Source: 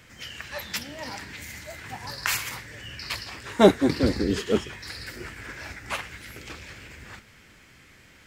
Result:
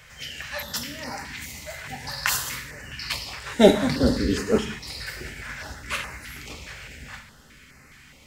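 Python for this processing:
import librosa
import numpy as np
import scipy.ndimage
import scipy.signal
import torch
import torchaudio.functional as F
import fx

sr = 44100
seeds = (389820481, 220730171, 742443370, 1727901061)

y = fx.peak_eq(x, sr, hz=330.0, db=-11.0, octaves=0.24)
y = fx.rev_gated(y, sr, seeds[0], gate_ms=230, shape='falling', drr_db=4.5)
y = fx.filter_held_notch(y, sr, hz=4.8, low_hz=260.0, high_hz=3300.0)
y = F.gain(torch.from_numpy(y), 3.0).numpy()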